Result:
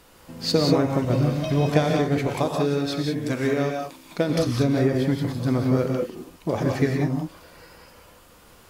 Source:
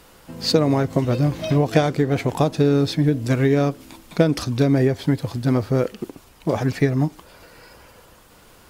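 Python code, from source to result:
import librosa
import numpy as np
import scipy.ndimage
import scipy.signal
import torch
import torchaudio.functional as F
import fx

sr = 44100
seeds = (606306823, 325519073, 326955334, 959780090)

y = fx.low_shelf(x, sr, hz=190.0, db=-10.0, at=(2.27, 4.3))
y = fx.rev_gated(y, sr, seeds[0], gate_ms=210, shape='rising', drr_db=1.0)
y = y * 10.0 ** (-4.0 / 20.0)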